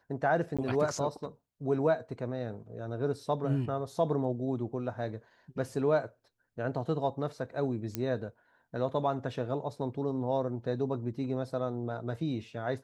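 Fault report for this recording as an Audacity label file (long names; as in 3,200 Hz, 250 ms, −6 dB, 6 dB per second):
0.570000	0.590000	drop-out 16 ms
7.950000	7.950000	click −16 dBFS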